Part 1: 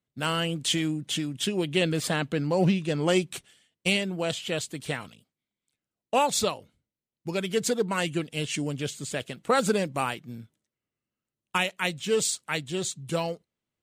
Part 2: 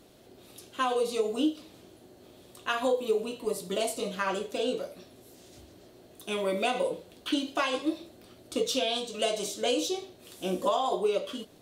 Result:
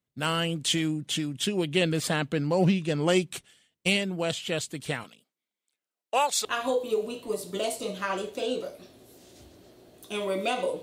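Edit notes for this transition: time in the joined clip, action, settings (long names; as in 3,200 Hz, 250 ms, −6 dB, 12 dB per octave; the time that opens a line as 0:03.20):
part 1
0:05.03–0:06.45: high-pass filter 250 Hz → 650 Hz
0:06.45: continue with part 2 from 0:02.62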